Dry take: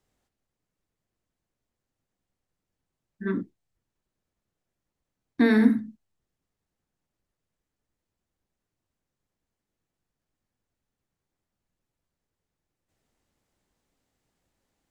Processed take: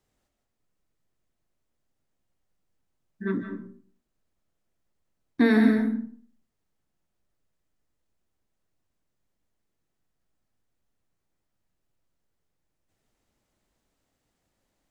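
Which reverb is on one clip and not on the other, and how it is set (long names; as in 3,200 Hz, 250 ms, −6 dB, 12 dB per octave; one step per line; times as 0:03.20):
comb and all-pass reverb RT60 0.52 s, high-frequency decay 0.55×, pre-delay 110 ms, DRR 5 dB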